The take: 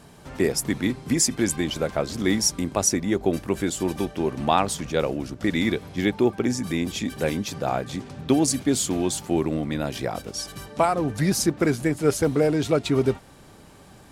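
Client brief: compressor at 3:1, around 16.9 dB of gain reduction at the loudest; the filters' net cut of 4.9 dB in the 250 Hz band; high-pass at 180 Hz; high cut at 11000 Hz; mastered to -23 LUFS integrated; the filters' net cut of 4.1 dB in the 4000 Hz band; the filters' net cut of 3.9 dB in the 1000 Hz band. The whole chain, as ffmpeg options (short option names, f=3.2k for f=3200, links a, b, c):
-af "highpass=180,lowpass=11k,equalizer=f=250:t=o:g=-5,equalizer=f=1k:t=o:g=-5,equalizer=f=4k:t=o:g=-5.5,acompressor=threshold=-43dB:ratio=3,volume=19dB"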